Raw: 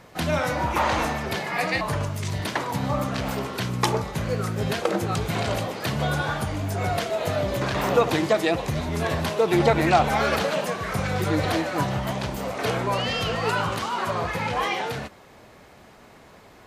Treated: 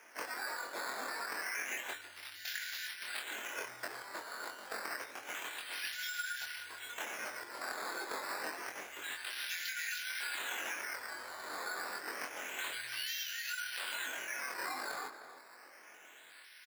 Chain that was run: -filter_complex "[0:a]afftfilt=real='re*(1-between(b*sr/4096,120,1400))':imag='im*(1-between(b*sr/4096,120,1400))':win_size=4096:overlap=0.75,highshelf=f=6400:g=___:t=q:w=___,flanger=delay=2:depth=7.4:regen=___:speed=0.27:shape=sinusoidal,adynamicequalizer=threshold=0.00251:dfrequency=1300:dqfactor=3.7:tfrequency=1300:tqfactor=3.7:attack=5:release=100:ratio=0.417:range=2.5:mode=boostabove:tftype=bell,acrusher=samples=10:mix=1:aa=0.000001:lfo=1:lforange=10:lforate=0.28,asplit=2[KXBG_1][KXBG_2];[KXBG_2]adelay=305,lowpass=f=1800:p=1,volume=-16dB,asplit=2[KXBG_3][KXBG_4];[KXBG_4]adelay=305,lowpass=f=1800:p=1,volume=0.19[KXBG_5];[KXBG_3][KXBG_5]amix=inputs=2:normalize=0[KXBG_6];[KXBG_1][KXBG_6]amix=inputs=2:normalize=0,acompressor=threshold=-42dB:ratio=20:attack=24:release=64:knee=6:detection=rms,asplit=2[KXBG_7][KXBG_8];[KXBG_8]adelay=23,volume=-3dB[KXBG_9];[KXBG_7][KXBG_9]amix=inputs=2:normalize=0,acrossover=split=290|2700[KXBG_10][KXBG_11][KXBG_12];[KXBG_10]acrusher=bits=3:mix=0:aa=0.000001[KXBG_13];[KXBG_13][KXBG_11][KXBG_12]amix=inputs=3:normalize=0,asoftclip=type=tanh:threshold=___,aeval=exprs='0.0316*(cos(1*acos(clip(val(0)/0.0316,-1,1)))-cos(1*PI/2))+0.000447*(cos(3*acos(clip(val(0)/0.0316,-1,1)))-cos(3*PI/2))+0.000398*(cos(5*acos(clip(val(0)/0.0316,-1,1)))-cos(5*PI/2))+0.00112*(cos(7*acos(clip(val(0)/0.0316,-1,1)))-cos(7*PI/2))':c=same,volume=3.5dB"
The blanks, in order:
-6, 3, -34, -29dB